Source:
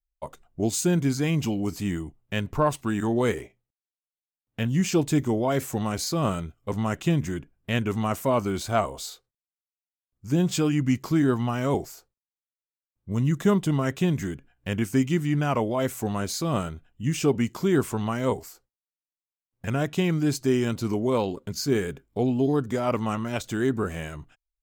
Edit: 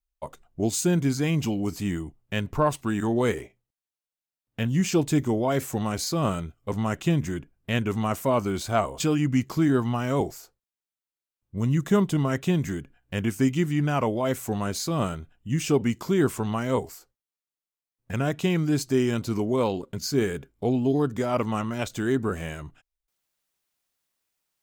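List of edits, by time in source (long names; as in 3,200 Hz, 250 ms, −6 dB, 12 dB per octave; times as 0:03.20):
0:09.00–0:10.54: remove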